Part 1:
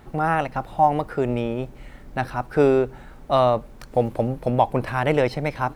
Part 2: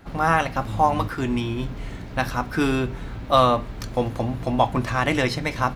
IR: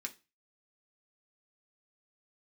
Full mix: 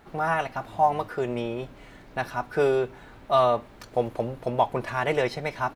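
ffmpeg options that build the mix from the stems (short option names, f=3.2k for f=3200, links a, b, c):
-filter_complex "[0:a]volume=-4dB[a];[1:a]adelay=0.5,volume=-9.5dB[b];[a][b]amix=inputs=2:normalize=0,bass=f=250:g=-8,treble=f=4k:g=-2"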